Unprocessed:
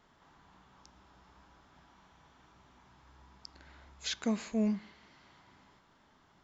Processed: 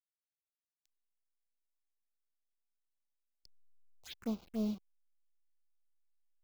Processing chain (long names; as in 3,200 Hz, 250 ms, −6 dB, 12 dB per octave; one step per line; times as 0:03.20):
hold until the input has moved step −37.5 dBFS
phaser swept by the level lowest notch 180 Hz, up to 1,800 Hz, full sweep at −31.5 dBFS
expander for the loud parts 1.5 to 1, over −55 dBFS
level −4 dB